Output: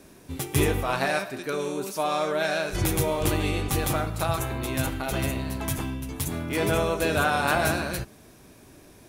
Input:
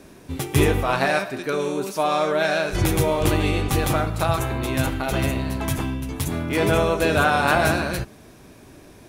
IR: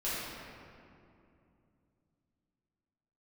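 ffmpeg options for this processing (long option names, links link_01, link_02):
-af "highshelf=frequency=6300:gain=6.5,volume=-5dB"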